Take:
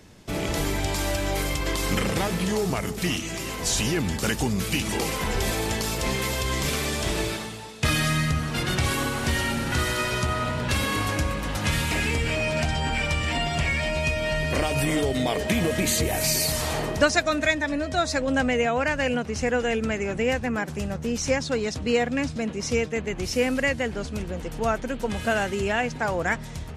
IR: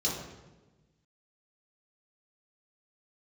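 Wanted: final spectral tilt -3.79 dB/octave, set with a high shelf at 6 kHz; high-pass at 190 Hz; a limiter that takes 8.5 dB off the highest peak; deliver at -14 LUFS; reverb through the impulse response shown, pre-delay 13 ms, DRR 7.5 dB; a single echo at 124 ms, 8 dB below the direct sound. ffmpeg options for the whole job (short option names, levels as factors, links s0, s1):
-filter_complex "[0:a]highpass=190,highshelf=f=6000:g=6.5,alimiter=limit=0.178:level=0:latency=1,aecho=1:1:124:0.398,asplit=2[s0][s1];[1:a]atrim=start_sample=2205,adelay=13[s2];[s1][s2]afir=irnorm=-1:irlink=0,volume=0.188[s3];[s0][s3]amix=inputs=2:normalize=0,volume=3.16"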